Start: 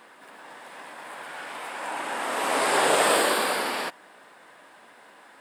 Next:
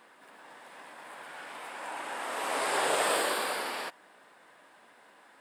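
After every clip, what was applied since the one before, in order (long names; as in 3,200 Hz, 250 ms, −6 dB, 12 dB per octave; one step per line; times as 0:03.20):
dynamic equaliser 210 Hz, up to −5 dB, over −44 dBFS, Q 1.1
level −6.5 dB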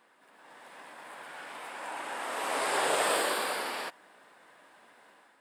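automatic gain control gain up to 7 dB
level −7 dB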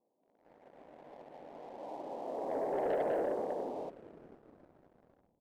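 inverse Chebyshev low-pass filter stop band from 1,400 Hz, stop band 40 dB
echo with shifted repeats 463 ms, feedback 56%, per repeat −76 Hz, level −19.5 dB
leveller curve on the samples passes 2
level −5 dB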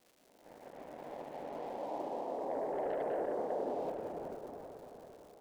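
surface crackle 350 per second −60 dBFS
reversed playback
downward compressor 5 to 1, threshold −43 dBFS, peak gain reduction 12 dB
reversed playback
delay with a band-pass on its return 385 ms, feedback 54%, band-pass 730 Hz, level −6 dB
level +7 dB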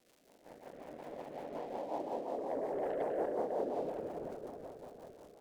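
floating-point word with a short mantissa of 6 bits
rotating-speaker cabinet horn 5.5 Hz
level +2.5 dB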